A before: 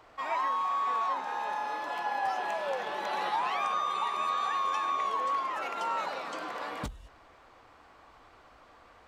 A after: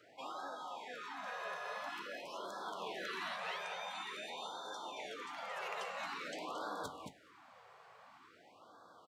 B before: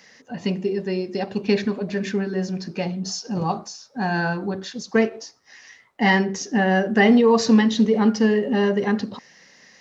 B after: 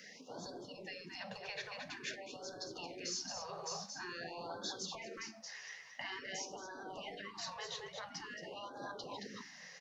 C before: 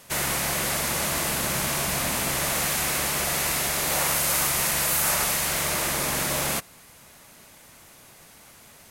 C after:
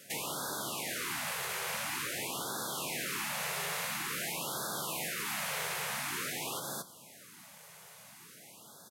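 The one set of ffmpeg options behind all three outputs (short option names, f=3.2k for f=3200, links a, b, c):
-filter_complex "[0:a]highpass=f=130:w=0.5412,highpass=f=130:w=1.3066,aecho=1:1:223:0.398,acrossover=split=3700[a][b];[b]acompressor=threshold=-31dB:ratio=4:attack=1:release=60[c];[a][c]amix=inputs=2:normalize=0,alimiter=limit=-15dB:level=0:latency=1:release=79,acompressor=threshold=-28dB:ratio=5,afftfilt=real='re*lt(hypot(re,im),0.0794)':imag='im*lt(hypot(re,im),0.0794)':win_size=1024:overlap=0.75,flanger=delay=8.9:depth=3.6:regen=78:speed=1.5:shape=triangular,afftfilt=real='re*(1-between(b*sr/1024,250*pow(2400/250,0.5+0.5*sin(2*PI*0.48*pts/sr))/1.41,250*pow(2400/250,0.5+0.5*sin(2*PI*0.48*pts/sr))*1.41))':imag='im*(1-between(b*sr/1024,250*pow(2400/250,0.5+0.5*sin(2*PI*0.48*pts/sr))/1.41,250*pow(2400/250,0.5+0.5*sin(2*PI*0.48*pts/sr))*1.41))':win_size=1024:overlap=0.75,volume=1dB"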